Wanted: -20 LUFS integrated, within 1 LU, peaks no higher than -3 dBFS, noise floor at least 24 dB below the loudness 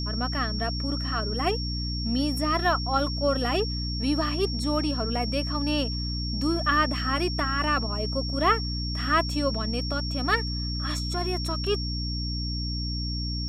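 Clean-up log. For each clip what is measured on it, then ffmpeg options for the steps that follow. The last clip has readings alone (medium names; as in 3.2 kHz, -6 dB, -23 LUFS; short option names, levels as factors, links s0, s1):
hum 60 Hz; highest harmonic 300 Hz; hum level -28 dBFS; steady tone 5.5 kHz; tone level -33 dBFS; loudness -26.5 LUFS; peak level -9.0 dBFS; loudness target -20.0 LUFS
-> -af "bandreject=f=60:t=h:w=4,bandreject=f=120:t=h:w=4,bandreject=f=180:t=h:w=4,bandreject=f=240:t=h:w=4,bandreject=f=300:t=h:w=4"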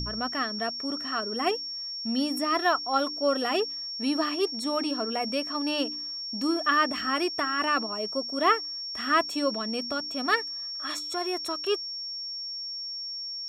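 hum not found; steady tone 5.5 kHz; tone level -33 dBFS
-> -af "bandreject=f=5500:w=30"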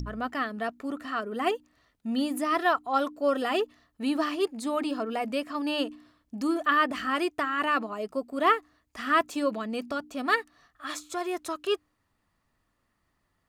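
steady tone not found; loudness -29.0 LUFS; peak level -10.0 dBFS; loudness target -20.0 LUFS
-> -af "volume=2.82,alimiter=limit=0.708:level=0:latency=1"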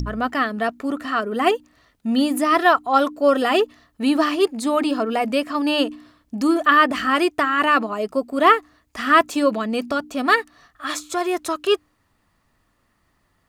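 loudness -20.0 LUFS; peak level -3.0 dBFS; noise floor -66 dBFS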